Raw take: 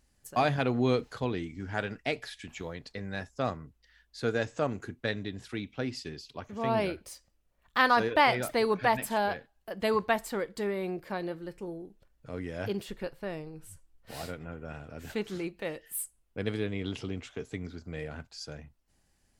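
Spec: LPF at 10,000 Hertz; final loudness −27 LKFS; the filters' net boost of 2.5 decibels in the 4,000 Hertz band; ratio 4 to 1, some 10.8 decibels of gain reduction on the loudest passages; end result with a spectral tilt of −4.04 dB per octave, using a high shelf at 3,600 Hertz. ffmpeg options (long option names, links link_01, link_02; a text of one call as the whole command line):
ffmpeg -i in.wav -af "lowpass=10000,highshelf=frequency=3600:gain=-4.5,equalizer=frequency=4000:width_type=o:gain=6,acompressor=threshold=-31dB:ratio=4,volume=11dB" out.wav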